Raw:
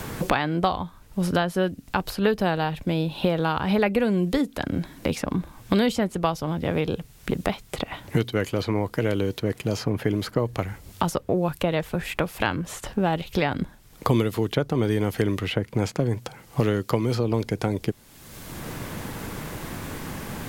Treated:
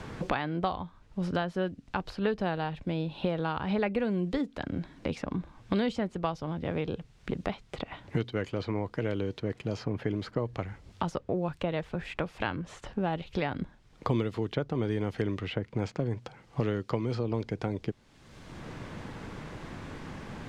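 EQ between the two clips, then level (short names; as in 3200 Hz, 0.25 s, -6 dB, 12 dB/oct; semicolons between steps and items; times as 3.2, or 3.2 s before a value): air absorption 110 m; -7.0 dB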